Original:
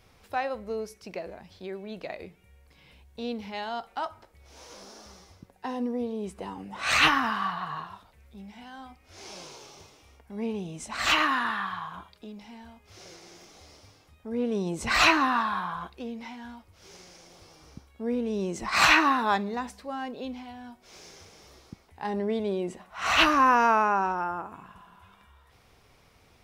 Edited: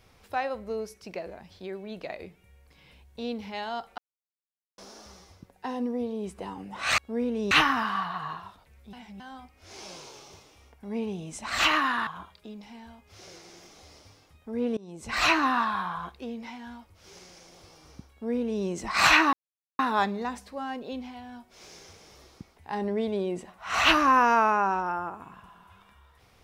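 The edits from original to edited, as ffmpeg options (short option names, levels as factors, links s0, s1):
-filter_complex "[0:a]asplit=10[s0][s1][s2][s3][s4][s5][s6][s7][s8][s9];[s0]atrim=end=3.98,asetpts=PTS-STARTPTS,afade=t=out:st=3.976:d=0.004:c=hsin[s10];[s1]atrim=start=3.98:end=4.78,asetpts=PTS-STARTPTS,volume=0[s11];[s2]atrim=start=4.78:end=6.982,asetpts=PTS-STARTPTS,afade=t=in:d=0.004:c=hsin[s12];[s3]atrim=start=17.888:end=18.422[s13];[s4]atrim=start=6.978:end=8.402[s14];[s5]atrim=start=8.398:end=8.672,asetpts=PTS-STARTPTS,areverse[s15];[s6]atrim=start=8.668:end=11.542[s16];[s7]atrim=start=11.848:end=14.55,asetpts=PTS-STARTPTS,afade=t=out:st=2.698:d=0.004:c=hsin:silence=0.0630957[s17];[s8]atrim=start=14.55:end=19.11,asetpts=PTS-STARTPTS,afade=t=in:d=0.72:silence=0.0630957,afade=t=out:st=4.556:d=0.004:c=hsin,apad=pad_dur=0.46[s18];[s9]atrim=start=19.11,asetpts=PTS-STARTPTS,afade=t=in:d=0.004:c=hsin[s19];[s10][s11][s12]concat=n=3:v=0:a=1[s20];[s20][s13]acrossfade=d=0.004:c1=hsin:c2=hsin[s21];[s21][s14]acrossfade=d=0.004:c1=hsin:c2=hsin[s22];[s22][s15]acrossfade=d=0.004:c1=hsin:c2=hsin[s23];[s23][s16]acrossfade=d=0.004:c1=hsin:c2=hsin[s24];[s17][s18][s19]concat=n=3:v=0:a=1[s25];[s24][s25]acrossfade=d=0.004:c1=hsin:c2=hsin"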